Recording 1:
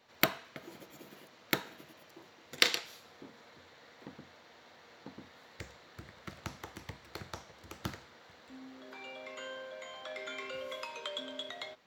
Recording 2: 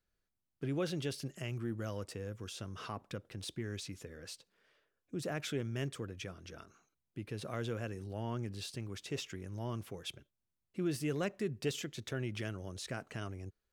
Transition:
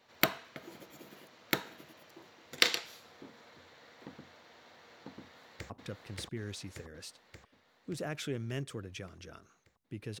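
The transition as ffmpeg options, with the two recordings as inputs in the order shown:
-filter_complex "[0:a]apad=whole_dur=10.2,atrim=end=10.2,atrim=end=5.702[a];[1:a]atrim=start=2.948:end=7.45[b];[a][b]acrossfade=d=0.004:c1=hsin:c2=hsin,asplit=2[c][d];[d]afade=t=in:st=5.2:d=0.01,afade=t=out:st=5.7:d=0.01,aecho=0:1:580|1160|1740|2320|2900|3480|4060|4640|5220|5800|6380:0.944061|0.61364|0.398866|0.259263|0.168521|0.109538|0.0712|0.04628|0.030082|0.0195533|0.0127096[e];[c][e]amix=inputs=2:normalize=0"

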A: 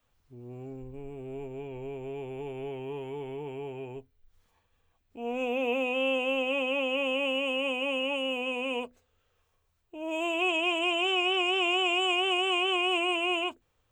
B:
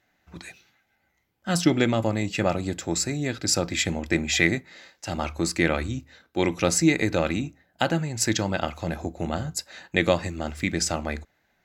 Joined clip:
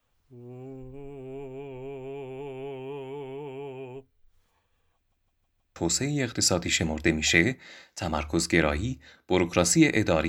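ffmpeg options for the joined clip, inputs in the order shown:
-filter_complex "[0:a]apad=whole_dur=10.28,atrim=end=10.28,asplit=5[a][b][c][d][e];[a]atrim=end=5.122[f];[b]atrim=start=4.958:end=5.122[g];[c]atrim=start=4.958:end=5.122[h];[d]atrim=start=4.958:end=5.122[i];[e]atrim=start=4.958:end=5.122[j];[1:a]atrim=start=2.818:end=7.34[k];[f][g]acrossfade=d=0.004:c1=hsin:c2=hsin[l];[l][h]acrossfade=d=0.004:c1=hsin:c2=hsin[m];[m][i]acrossfade=d=0.004:c1=hsin:c2=hsin[n];[n][j]acrossfade=d=0.004:c1=hsin:c2=hsin[o];[o][k]acrossfade=d=0.004:c1=hsin:c2=hsin"

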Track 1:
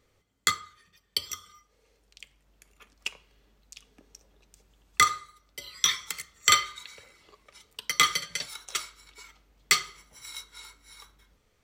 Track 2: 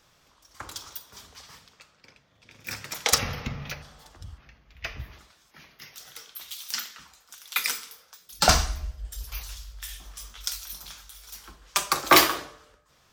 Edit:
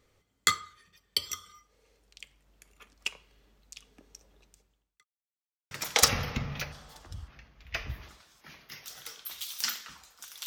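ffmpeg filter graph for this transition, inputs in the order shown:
-filter_complex "[0:a]apad=whole_dur=10.46,atrim=end=10.46,asplit=2[a][b];[a]atrim=end=5.05,asetpts=PTS-STARTPTS,afade=t=out:st=4.43:d=0.62:c=qua[c];[b]atrim=start=5.05:end=5.71,asetpts=PTS-STARTPTS,volume=0[d];[1:a]atrim=start=2.81:end=7.56,asetpts=PTS-STARTPTS,afade=t=in:d=0.004:c=hsin[e];[c][d][e]concat=n=3:v=0:a=1"

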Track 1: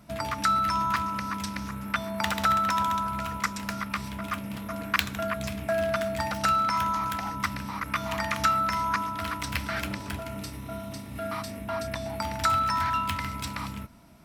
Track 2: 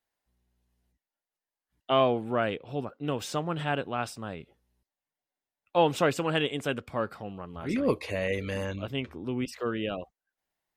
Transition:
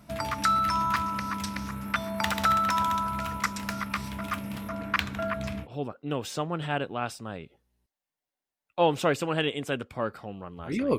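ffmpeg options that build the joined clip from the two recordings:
-filter_complex "[0:a]asettb=1/sr,asplit=3[a][b][c];[a]atrim=end=4.694[d];[b]atrim=start=4.69:end=5.68,asetpts=PTS-STARTPTS,afade=t=in:d=0.004:c=qsin,afade=t=out:st=0.986:d=0.004:c=qsin,lowpass=f=2.8k:p=1[e];[c]atrim=start=5.676[f];[d][e]acrossfade=d=0.004:c1=hsin:c2=qsin[g];[g][f]acrossfade=d=0.004:c1=qsin:c2=hsin,apad=whole_dur=10.98,atrim=end=10.98,atrim=end=5.68,asetpts=PTS-STARTPTS[h];[1:a]atrim=start=2.57:end=7.95,asetpts=PTS-STARTPTS[i];[h][i]acrossfade=d=0.08:c1=tri:c2=tri"

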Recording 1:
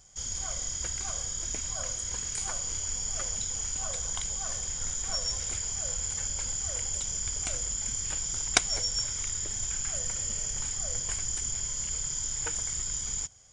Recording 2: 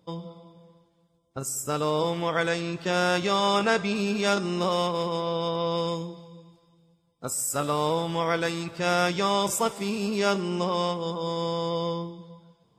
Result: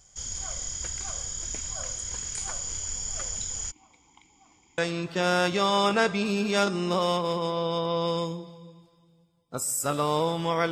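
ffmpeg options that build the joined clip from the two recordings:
-filter_complex "[0:a]asplit=3[a][b][c];[a]afade=t=out:st=3.7:d=0.02[d];[b]asplit=3[e][f][g];[e]bandpass=f=300:t=q:w=8,volume=0dB[h];[f]bandpass=f=870:t=q:w=8,volume=-6dB[i];[g]bandpass=f=2.24k:t=q:w=8,volume=-9dB[j];[h][i][j]amix=inputs=3:normalize=0,afade=t=in:st=3.7:d=0.02,afade=t=out:st=4.78:d=0.02[k];[c]afade=t=in:st=4.78:d=0.02[l];[d][k][l]amix=inputs=3:normalize=0,apad=whole_dur=10.71,atrim=end=10.71,atrim=end=4.782[m];[1:a]atrim=start=2.478:end=8.41[n];[m][n]acrossfade=d=0.004:c1=hsin:c2=hsin"

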